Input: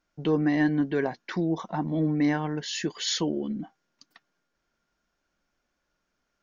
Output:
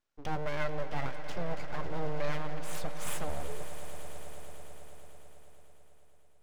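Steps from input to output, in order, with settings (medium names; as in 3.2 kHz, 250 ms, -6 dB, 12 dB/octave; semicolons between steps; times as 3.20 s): full-wave rectifier; echo with a slow build-up 110 ms, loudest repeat 5, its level -15 dB; trim -6.5 dB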